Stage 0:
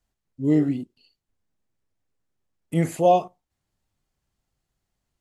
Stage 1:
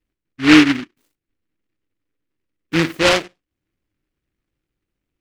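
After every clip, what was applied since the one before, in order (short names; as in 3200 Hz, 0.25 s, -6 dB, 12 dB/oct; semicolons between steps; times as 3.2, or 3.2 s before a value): resonant low shelf 640 Hz +6 dB, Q 3; small resonant body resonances 310/760 Hz, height 11 dB; noise-modulated delay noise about 1900 Hz, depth 0.25 ms; gain -7 dB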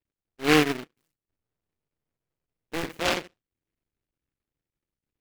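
cycle switcher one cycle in 2, muted; gain -7.5 dB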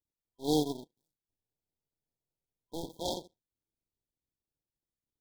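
FFT band-reject 1000–3200 Hz; gain -7.5 dB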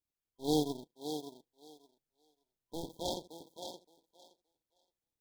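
thinning echo 0.57 s, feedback 17%, high-pass 310 Hz, level -7 dB; gain -2 dB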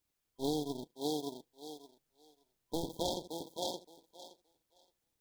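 compressor 16:1, threshold -39 dBFS, peak gain reduction 15 dB; gain +8.5 dB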